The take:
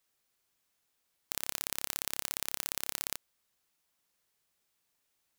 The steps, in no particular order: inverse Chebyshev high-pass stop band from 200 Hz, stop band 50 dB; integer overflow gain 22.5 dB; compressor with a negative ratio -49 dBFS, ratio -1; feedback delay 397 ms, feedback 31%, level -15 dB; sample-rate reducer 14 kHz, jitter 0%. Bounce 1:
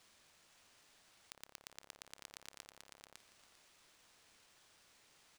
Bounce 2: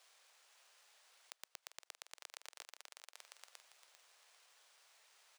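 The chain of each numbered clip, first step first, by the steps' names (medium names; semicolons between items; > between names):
compressor with a negative ratio > integer overflow > inverse Chebyshev high-pass > sample-rate reducer > feedback delay; compressor with a negative ratio > sample-rate reducer > feedback delay > integer overflow > inverse Chebyshev high-pass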